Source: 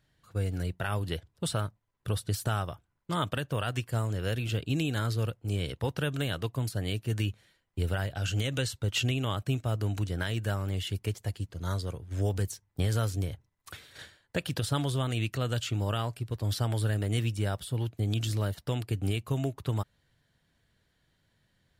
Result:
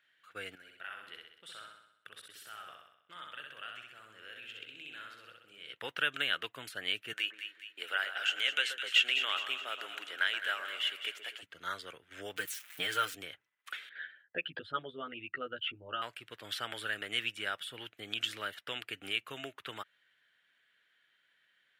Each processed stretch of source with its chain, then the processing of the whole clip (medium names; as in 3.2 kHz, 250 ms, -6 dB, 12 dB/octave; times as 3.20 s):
0.55–5.74 s: level held to a coarse grid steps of 23 dB + feedback delay 64 ms, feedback 57%, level -3.5 dB
7.13–11.43 s: high-pass 480 Hz + two-band feedback delay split 1.6 kHz, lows 125 ms, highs 209 ms, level -8.5 dB
12.36–13.15 s: zero-crossing glitches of -34 dBFS + comb 6.5 ms, depth 85%
13.89–16.02 s: resonances exaggerated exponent 2 + distance through air 430 m + doubling 12 ms -3 dB
whole clip: high-pass 400 Hz 12 dB/octave; high-order bell 2.1 kHz +14.5 dB; trim -8 dB